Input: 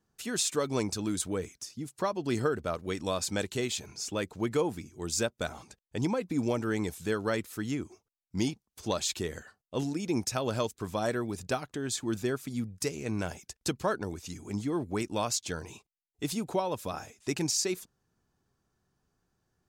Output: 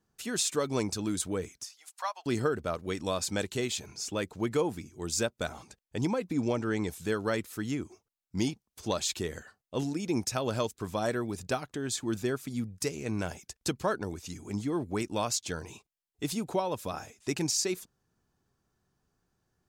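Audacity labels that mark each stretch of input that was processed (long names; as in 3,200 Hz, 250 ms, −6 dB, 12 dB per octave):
1.640000	2.260000	Butterworth high-pass 720 Hz
6.330000	6.890000	low-pass filter 7,500 Hz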